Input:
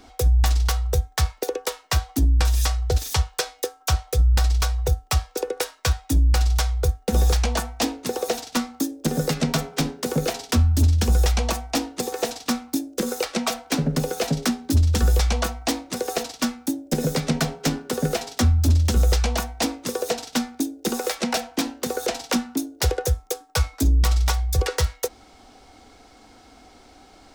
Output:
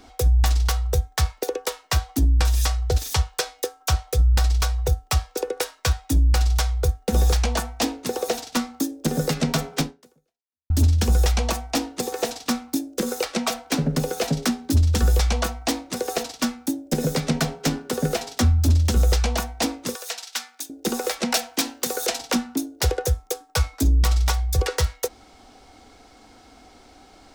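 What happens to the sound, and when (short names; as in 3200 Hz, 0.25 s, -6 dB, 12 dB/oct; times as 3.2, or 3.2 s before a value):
9.81–10.7 fade out exponential
19.95–20.7 HPF 1300 Hz
21.32–22.19 tilt +2 dB/oct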